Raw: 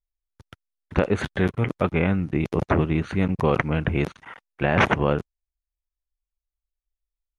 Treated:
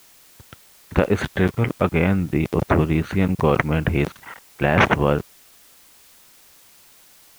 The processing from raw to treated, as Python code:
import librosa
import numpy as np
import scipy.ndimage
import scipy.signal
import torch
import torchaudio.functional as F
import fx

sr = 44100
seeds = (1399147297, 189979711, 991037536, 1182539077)

y = fx.dmg_noise_colour(x, sr, seeds[0], colour='white', level_db=-54.0)
y = y * 10.0 ** (3.0 / 20.0)